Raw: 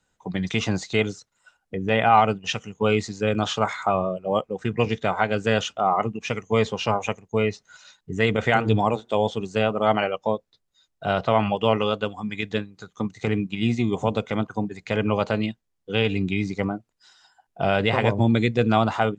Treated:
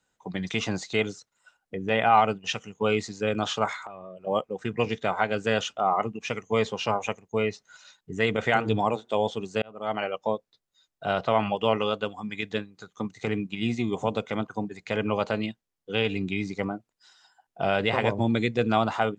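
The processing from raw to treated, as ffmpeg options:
ffmpeg -i in.wav -filter_complex "[0:a]asettb=1/sr,asplit=3[link_01][link_02][link_03];[link_01]atrim=end=3.764[link_04];[link_02]atrim=start=3.76:end=4.27,asetpts=PTS-STARTPTS,afade=type=in:duration=0.004:curve=qsin,afade=type=out:start_time=0.506:duration=0.004:curve=qsin,acompressor=threshold=-33dB:ratio=20:attack=3.2:release=140:knee=1:detection=peak[link_05];[link_03]atrim=start=4.266[link_06];[link_04][link_05]acrossfade=duration=0.004:curve1=hsin:curve2=qsin[link_07];[link_07][link_06]acrossfade=duration=0.004:curve1=qsin:curve2=hsin,asplit=2[link_08][link_09];[link_08]atrim=end=9.62,asetpts=PTS-STARTPTS,afade=type=out:start_time=9.616:duration=0.004:curve=hsin[link_10];[link_09]atrim=start=9.62,asetpts=PTS-STARTPTS,afade=type=in:duration=0.58[link_11];[link_10][link_11]concat=n=2:v=0:a=1,lowshelf=frequency=130:gain=-8.5,volume=-2.5dB" out.wav

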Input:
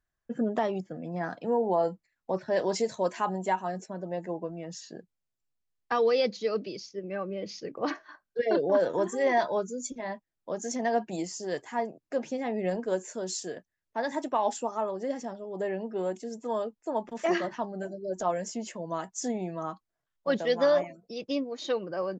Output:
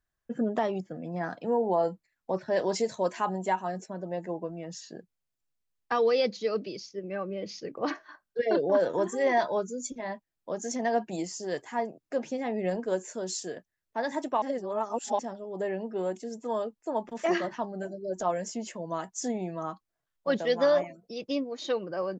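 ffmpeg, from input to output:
ffmpeg -i in.wav -filter_complex "[0:a]asplit=3[link_01][link_02][link_03];[link_01]atrim=end=14.422[link_04];[link_02]atrim=start=14.418:end=15.192,asetpts=PTS-STARTPTS,areverse[link_05];[link_03]atrim=start=15.188[link_06];[link_04][link_05]acrossfade=duration=0.004:curve1=hsin:curve2=hsin[link_07];[link_07][link_06]acrossfade=duration=0.004:curve1=hsin:curve2=hsin" out.wav

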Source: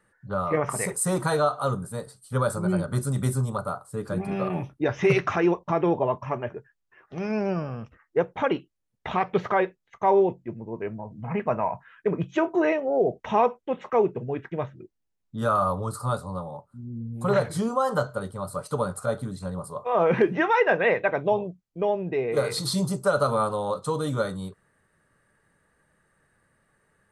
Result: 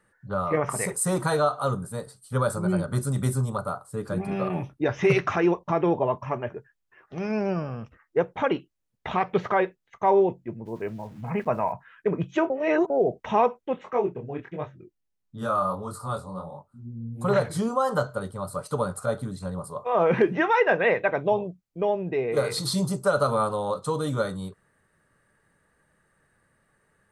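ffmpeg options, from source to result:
ffmpeg -i in.wav -filter_complex "[0:a]asplit=3[link_01][link_02][link_03];[link_01]afade=type=out:start_time=10.65:duration=0.02[link_04];[link_02]aeval=exprs='val(0)*gte(abs(val(0)),0.00299)':channel_layout=same,afade=type=in:start_time=10.65:duration=0.02,afade=type=out:start_time=11.71:duration=0.02[link_05];[link_03]afade=type=in:start_time=11.71:duration=0.02[link_06];[link_04][link_05][link_06]amix=inputs=3:normalize=0,asplit=3[link_07][link_08][link_09];[link_07]afade=type=out:start_time=13.78:duration=0.02[link_10];[link_08]flanger=delay=20:depth=7.1:speed=1.5,afade=type=in:start_time=13.78:duration=0.02,afade=type=out:start_time=17.18:duration=0.02[link_11];[link_09]afade=type=in:start_time=17.18:duration=0.02[link_12];[link_10][link_11][link_12]amix=inputs=3:normalize=0,asplit=3[link_13][link_14][link_15];[link_13]atrim=end=12.502[link_16];[link_14]atrim=start=12.498:end=12.902,asetpts=PTS-STARTPTS,areverse[link_17];[link_15]atrim=start=12.898[link_18];[link_16][link_17]acrossfade=duration=0.004:curve1=hsin:curve2=hsin[link_19];[link_19][link_18]acrossfade=duration=0.004:curve1=hsin:curve2=hsin" out.wav

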